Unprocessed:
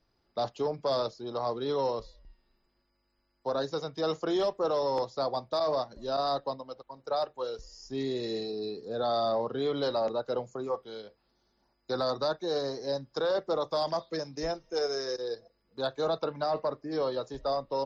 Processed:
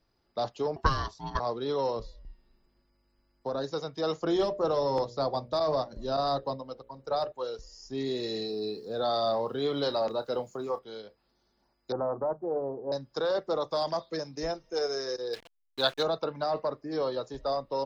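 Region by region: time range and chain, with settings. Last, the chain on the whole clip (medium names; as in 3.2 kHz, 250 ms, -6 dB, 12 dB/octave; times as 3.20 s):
0.76–1.40 s: transient shaper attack +11 dB, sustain +2 dB + ring modulator 530 Hz
1.96–3.64 s: bass shelf 380 Hz +7.5 dB + compression 2:1, threshold -31 dBFS
4.21–7.32 s: bass shelf 210 Hz +10.5 dB + hum notches 60/120/180/240/300/360/420/480/540/600 Hz
8.06–10.79 s: peaking EQ 3.9 kHz +3 dB 1.6 oct + word length cut 12-bit, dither none + doubling 28 ms -12 dB
11.92–12.92 s: steep low-pass 1.1 kHz + hum notches 50/100/150/200/250 Hz + loudspeaker Doppler distortion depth 0.12 ms
15.33–16.03 s: send-on-delta sampling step -50.5 dBFS + peaking EQ 2.8 kHz +13.5 dB 2.4 oct
whole clip: none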